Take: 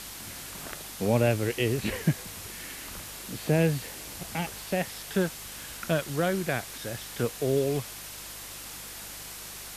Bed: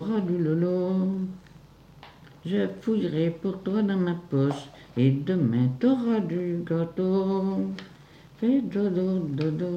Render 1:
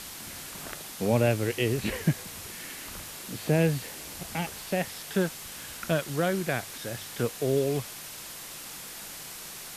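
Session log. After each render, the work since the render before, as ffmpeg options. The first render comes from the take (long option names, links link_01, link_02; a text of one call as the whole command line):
ffmpeg -i in.wav -af "bandreject=frequency=50:width_type=h:width=4,bandreject=frequency=100:width_type=h:width=4" out.wav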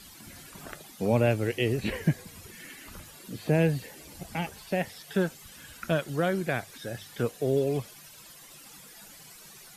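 ffmpeg -i in.wav -af "afftdn=noise_reduction=13:noise_floor=-42" out.wav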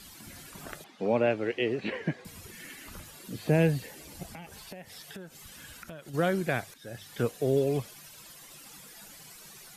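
ffmpeg -i in.wav -filter_complex "[0:a]asettb=1/sr,asplit=3[link_01][link_02][link_03];[link_01]atrim=end=0.844[link_04];[link_02]atrim=start=0.84:end=2.25,asetpts=PTS-STARTPTS,afade=type=in:duration=0.004:curve=qsin,afade=type=out:start_time=1.406:duration=0.004:curve=qsin,highpass=240,lowpass=3300[link_05];[link_03]atrim=start=2.246[link_06];[link_04][link_05]acrossfade=duration=0.004:curve1=hsin:curve2=qsin[link_07];[link_07][link_06]acrossfade=duration=0.004:curve1=qsin:curve2=hsin,asplit=3[link_08][link_09][link_10];[link_08]afade=type=out:start_time=4.3:duration=0.02[link_11];[link_09]acompressor=threshold=-41dB:ratio=6:attack=3.2:release=140:knee=1:detection=peak,afade=type=in:start_time=4.3:duration=0.02,afade=type=out:start_time=6.13:duration=0.02[link_12];[link_10]afade=type=in:start_time=6.13:duration=0.02[link_13];[link_11][link_12][link_13]amix=inputs=3:normalize=0,asplit=2[link_14][link_15];[link_14]atrim=end=6.74,asetpts=PTS-STARTPTS,afade=type=out:start_time=6.736:duration=0.004:curve=hsin:silence=0.223872[link_16];[link_15]atrim=start=6.74,asetpts=PTS-STARTPTS,afade=type=in:duration=0.43:silence=0.223872[link_17];[link_16][link_17]concat=n=2:v=0:a=1" out.wav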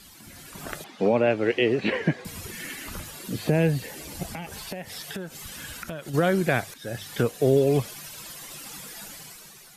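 ffmpeg -i in.wav -af "dynaudnorm=framelen=110:gausssize=11:maxgain=9dB,alimiter=limit=-11dB:level=0:latency=1:release=331" out.wav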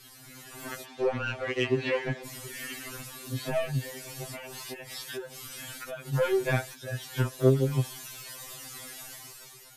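ffmpeg -i in.wav -af "asoftclip=type=tanh:threshold=-16dB,afftfilt=real='re*2.45*eq(mod(b,6),0)':imag='im*2.45*eq(mod(b,6),0)':win_size=2048:overlap=0.75" out.wav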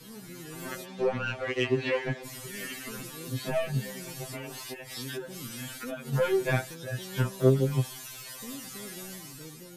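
ffmpeg -i in.wav -i bed.wav -filter_complex "[1:a]volume=-20.5dB[link_01];[0:a][link_01]amix=inputs=2:normalize=0" out.wav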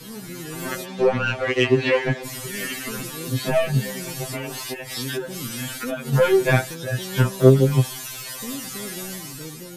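ffmpeg -i in.wav -af "volume=9dB" out.wav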